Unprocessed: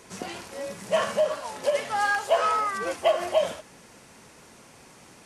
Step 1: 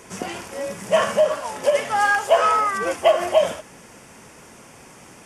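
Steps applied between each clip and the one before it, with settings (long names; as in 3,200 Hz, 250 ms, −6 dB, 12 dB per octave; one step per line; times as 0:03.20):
parametric band 4,100 Hz −11 dB 0.26 octaves
level +6 dB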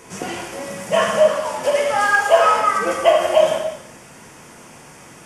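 reverb whose tail is shaped and stops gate 370 ms falling, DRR −0.5 dB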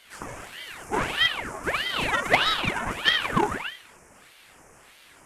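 flat-topped bell 3,600 Hz −12.5 dB 1.1 octaves
harmonic generator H 3 −12 dB, 5 −25 dB, 6 −23 dB, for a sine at −1.5 dBFS
ring modulator whose carrier an LFO sweeps 1,400 Hz, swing 85%, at 1.6 Hz
level −1.5 dB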